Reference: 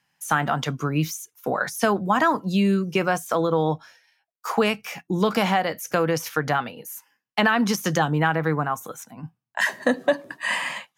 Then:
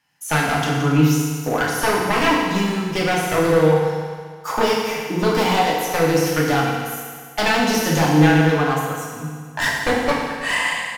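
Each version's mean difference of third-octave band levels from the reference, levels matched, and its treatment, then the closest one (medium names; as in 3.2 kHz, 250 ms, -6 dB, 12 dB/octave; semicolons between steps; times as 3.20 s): 11.0 dB: one-sided wavefolder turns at -19 dBFS; on a send: feedback delay 321 ms, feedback 30%, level -19 dB; on the sum: FDN reverb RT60 1.7 s, low-frequency decay 0.9×, high-frequency decay 0.95×, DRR -4.5 dB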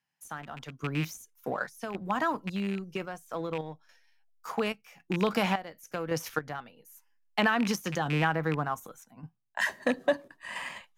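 4.5 dB: rattle on loud lows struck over -24 dBFS, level -16 dBFS; random-step tremolo 3.6 Hz, depth 75%; in parallel at -7 dB: hysteresis with a dead band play -26.5 dBFS; on the sum: trim -8.5 dB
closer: second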